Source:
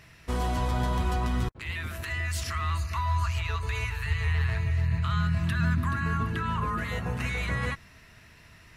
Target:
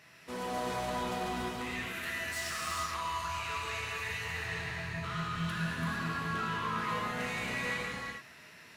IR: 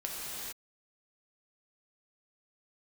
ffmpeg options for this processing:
-filter_complex "[0:a]highpass=220,asoftclip=type=tanh:threshold=-32.5dB[a];[1:a]atrim=start_sample=2205[b];[a][b]afir=irnorm=-1:irlink=0,volume=-2dB"

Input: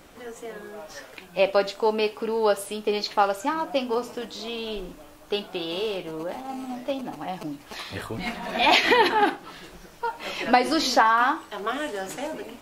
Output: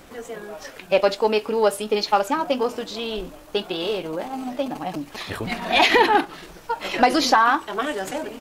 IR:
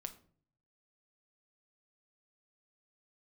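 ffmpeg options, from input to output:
-af "acontrast=53,atempo=1.5,volume=-2dB"

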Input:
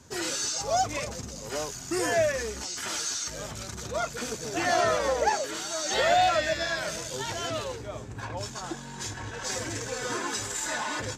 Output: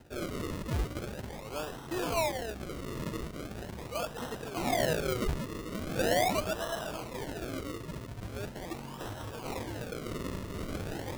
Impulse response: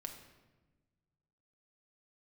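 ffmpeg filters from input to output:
-af "acrusher=samples=38:mix=1:aa=0.000001:lfo=1:lforange=38:lforate=0.41,areverse,acompressor=mode=upward:threshold=-29dB:ratio=2.5,areverse,volume=-5.5dB"

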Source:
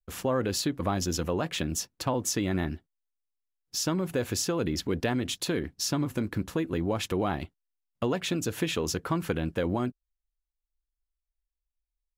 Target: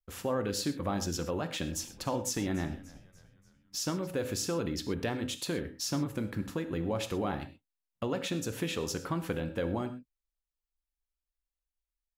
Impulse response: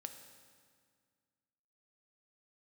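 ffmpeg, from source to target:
-filter_complex "[0:a]asplit=3[a][b][c];[a]afade=t=out:st=1.72:d=0.02[d];[b]asplit=5[e][f][g][h][i];[f]adelay=292,afreqshift=-97,volume=-19.5dB[j];[g]adelay=584,afreqshift=-194,volume=-25.3dB[k];[h]adelay=876,afreqshift=-291,volume=-31.2dB[l];[i]adelay=1168,afreqshift=-388,volume=-37dB[m];[e][j][k][l][m]amix=inputs=5:normalize=0,afade=t=in:st=1.72:d=0.02,afade=t=out:st=4.06:d=0.02[n];[c]afade=t=in:st=4.06:d=0.02[o];[d][n][o]amix=inputs=3:normalize=0[p];[1:a]atrim=start_sample=2205,afade=t=out:st=0.18:d=0.01,atrim=end_sample=8379[q];[p][q]afir=irnorm=-1:irlink=0"

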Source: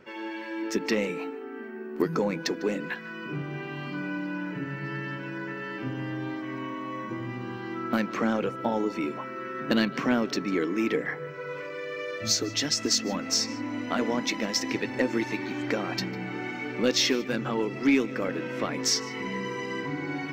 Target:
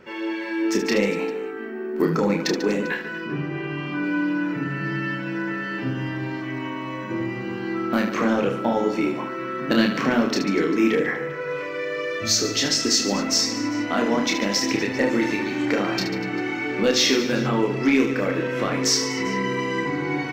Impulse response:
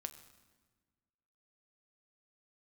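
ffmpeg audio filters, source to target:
-filter_complex "[0:a]asettb=1/sr,asplit=3[a][b][c];[a]atrim=end=3.244[d];[b]atrim=start=3.24:end=4.04,asetpts=PTS-STARTPTS,afade=t=in:d=0.004:c=qsin,afade=t=out:st=0.796:d=0.004:c=qsin,aemphasis=mode=reproduction:type=cd[e];[c]atrim=start=4.036[f];[d][e]acrossfade=d=0.004:c1=hsin:c2=qsin[g];[g][f]acrossfade=d=0.004:c1=qsin:c2=hsin,asplit=2[h][i];[i]alimiter=limit=-19.5dB:level=0:latency=1,volume=-3dB[j];[h][j]amix=inputs=2:normalize=0,aecho=1:1:30|75|142.5|243.8|395.6:0.631|0.398|0.251|0.158|0.1"

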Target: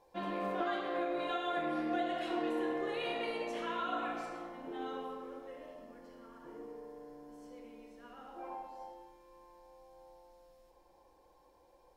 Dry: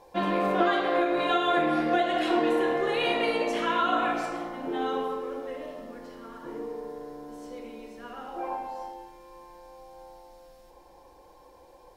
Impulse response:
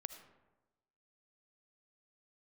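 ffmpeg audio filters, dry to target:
-filter_complex "[0:a]asettb=1/sr,asplit=3[a][b][c];[a]atrim=end=5.484[d];[b]atrim=start=5.48:end=7.91,asetpts=PTS-STARTPTS,afade=t=in:d=0.004:c=qsin,afade=t=out:st=2.426:d=0.004:c=qsin,bandreject=f=3.8k:w=11[e];[c]atrim=start=7.906[f];[d][e]acrossfade=d=0.004:c1=hsin:c2=qsin[g];[g][f]acrossfade=d=0.004:c1=qsin:c2=hsin[h];[1:a]atrim=start_sample=2205[i];[h][i]afir=irnorm=-1:irlink=0,volume=-8dB"

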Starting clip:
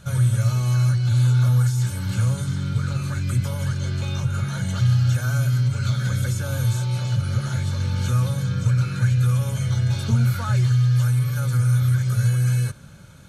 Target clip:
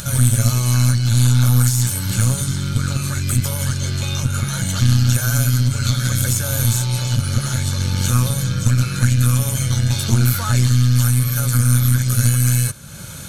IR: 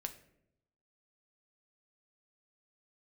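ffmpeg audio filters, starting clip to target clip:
-af "crystalizer=i=3:c=0,acompressor=mode=upward:threshold=-26dB:ratio=2.5,aeval=exprs='0.398*(cos(1*acos(clip(val(0)/0.398,-1,1)))-cos(1*PI/2))+0.158*(cos(2*acos(clip(val(0)/0.398,-1,1)))-cos(2*PI/2))':c=same,volume=3dB"

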